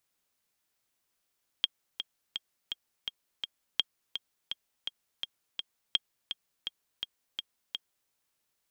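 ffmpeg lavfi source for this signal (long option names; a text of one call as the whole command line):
ffmpeg -f lavfi -i "aevalsrc='pow(10,(-11.5-9*gte(mod(t,6*60/167),60/167))/20)*sin(2*PI*3240*mod(t,60/167))*exp(-6.91*mod(t,60/167)/0.03)':duration=6.46:sample_rate=44100" out.wav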